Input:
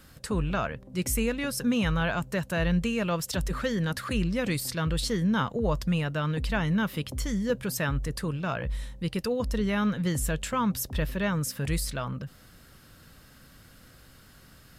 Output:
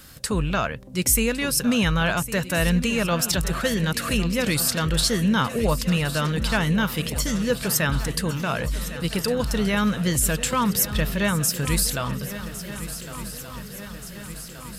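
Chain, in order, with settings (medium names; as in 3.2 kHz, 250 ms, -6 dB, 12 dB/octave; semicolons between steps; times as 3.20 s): treble shelf 2.7 kHz +8 dB; shuffle delay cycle 1476 ms, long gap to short 3:1, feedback 60%, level -14 dB; trim +4 dB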